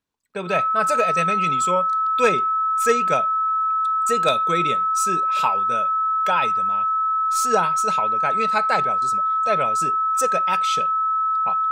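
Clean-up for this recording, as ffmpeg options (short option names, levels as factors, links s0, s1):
-af "bandreject=f=1300:w=30"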